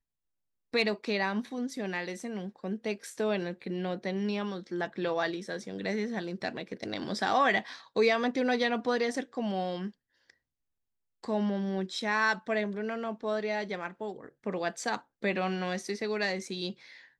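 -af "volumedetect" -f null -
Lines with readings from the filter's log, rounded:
mean_volume: -32.5 dB
max_volume: -13.8 dB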